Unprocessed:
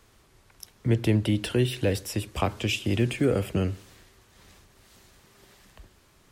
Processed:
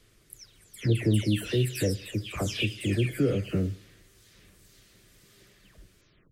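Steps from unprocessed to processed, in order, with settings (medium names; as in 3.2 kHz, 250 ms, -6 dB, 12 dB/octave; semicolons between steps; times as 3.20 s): delay that grows with frequency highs early, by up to 303 ms; peaking EQ 870 Hz -14.5 dB 0.79 oct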